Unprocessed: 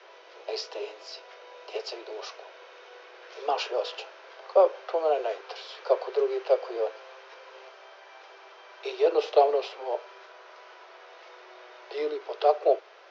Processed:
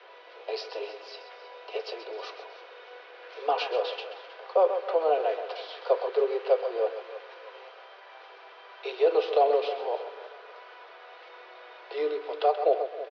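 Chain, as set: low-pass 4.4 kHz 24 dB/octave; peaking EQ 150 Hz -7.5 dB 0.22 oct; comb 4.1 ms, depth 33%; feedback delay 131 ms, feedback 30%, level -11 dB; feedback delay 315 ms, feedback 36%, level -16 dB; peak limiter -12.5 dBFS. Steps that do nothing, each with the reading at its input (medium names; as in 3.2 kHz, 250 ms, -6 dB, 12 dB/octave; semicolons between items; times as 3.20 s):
peaking EQ 150 Hz: input has nothing below 290 Hz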